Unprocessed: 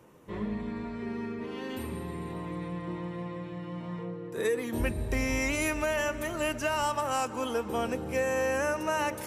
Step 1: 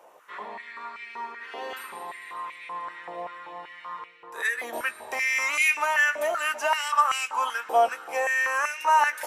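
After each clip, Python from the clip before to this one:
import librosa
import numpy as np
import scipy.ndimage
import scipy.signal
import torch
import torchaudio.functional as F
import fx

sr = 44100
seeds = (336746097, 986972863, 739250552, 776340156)

y = fx.doubler(x, sr, ms=17.0, db=-11)
y = fx.filter_held_highpass(y, sr, hz=5.2, low_hz=690.0, high_hz=2300.0)
y = y * librosa.db_to_amplitude(2.0)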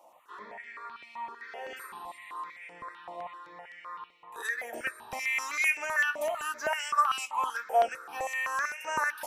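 y = fx.phaser_held(x, sr, hz=7.8, low_hz=430.0, high_hz=3900.0)
y = y * librosa.db_to_amplitude(-2.5)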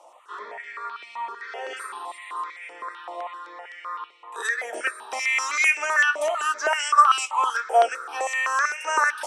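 y = fx.cabinet(x, sr, low_hz=330.0, low_slope=24, high_hz=9600.0, hz=(410.0, 1300.0, 3300.0, 5600.0, 8400.0), db=(4, 6, 4, 4, 7))
y = y * librosa.db_to_amplitude(6.0)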